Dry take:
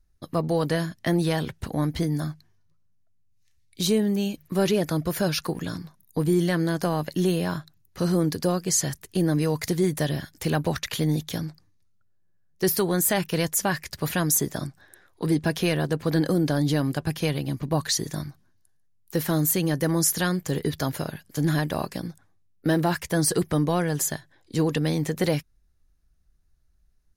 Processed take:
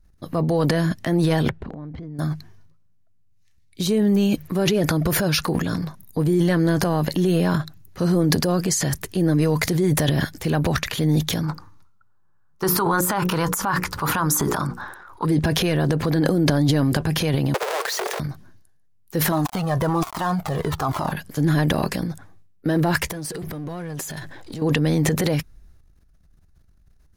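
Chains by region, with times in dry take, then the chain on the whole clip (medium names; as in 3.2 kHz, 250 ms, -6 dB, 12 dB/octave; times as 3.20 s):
1.49–2.19 s: compression, threshold -38 dBFS + tape spacing loss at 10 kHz 34 dB
11.43–15.25 s: high-order bell 1.1 kHz +14.5 dB 1 oct + hum notches 60/120/180/240/300/360/420/480/540 Hz
17.54–18.20 s: square wave that keeps the level + steep high-pass 370 Hz 96 dB/octave
19.32–21.12 s: dead-time distortion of 0.089 ms + high-order bell 930 Hz +12 dB 1.2 oct + Shepard-style flanger falling 1.2 Hz
23.11–24.62 s: power-law waveshaper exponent 0.7 + compression 16:1, threshold -34 dBFS
whole clip: peak limiter -17.5 dBFS; treble shelf 2.4 kHz -6 dB; transient shaper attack -2 dB, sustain +11 dB; trim +6 dB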